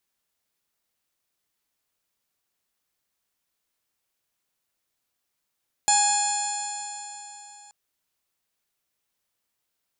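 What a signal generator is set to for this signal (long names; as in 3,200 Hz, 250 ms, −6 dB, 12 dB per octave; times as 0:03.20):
stiff-string partials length 1.83 s, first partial 824 Hz, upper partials −12/−13/−14/−8/−13/−19/1/−11.5/−12 dB, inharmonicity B 0.0026, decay 3.52 s, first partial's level −20 dB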